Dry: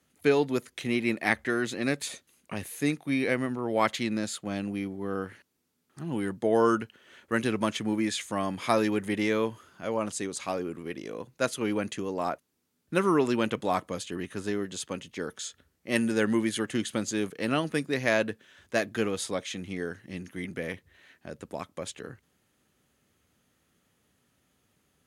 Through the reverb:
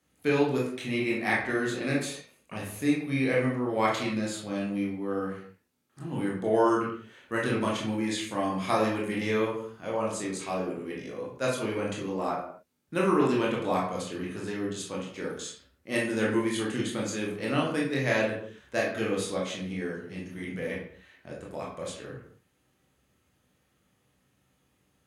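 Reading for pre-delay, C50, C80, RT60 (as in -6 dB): 19 ms, 3.5 dB, 8.0 dB, not exponential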